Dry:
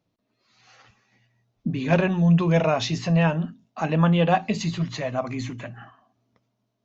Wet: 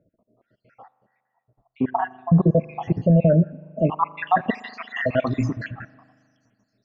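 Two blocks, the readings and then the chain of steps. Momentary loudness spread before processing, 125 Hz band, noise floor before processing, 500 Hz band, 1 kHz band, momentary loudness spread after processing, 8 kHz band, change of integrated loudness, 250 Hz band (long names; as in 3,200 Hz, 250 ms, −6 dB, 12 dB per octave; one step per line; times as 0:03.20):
14 LU, +0.5 dB, −76 dBFS, +1.5 dB, +2.5 dB, 14 LU, can't be measured, +1.0 dB, +0.5 dB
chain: time-frequency cells dropped at random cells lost 73%
low-pass filter sweep 780 Hz → 5,900 Hz, 0:03.44–0:06.08
brickwall limiter −17 dBFS, peak gain reduction 9 dB
spring reverb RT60 2 s, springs 39 ms, chirp 45 ms, DRR 19.5 dB
level +9 dB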